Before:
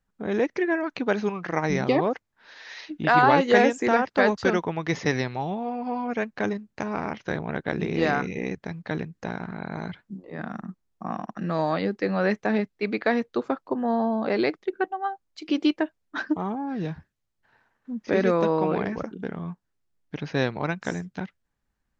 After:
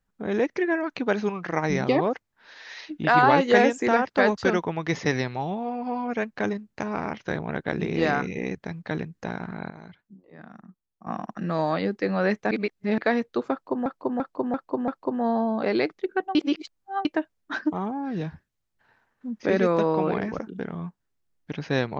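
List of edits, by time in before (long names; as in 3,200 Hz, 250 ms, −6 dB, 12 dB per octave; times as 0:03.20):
0:09.70–0:11.07: clip gain −11.5 dB
0:12.51–0:12.98: reverse
0:13.52–0:13.86: repeat, 5 plays
0:14.99–0:15.69: reverse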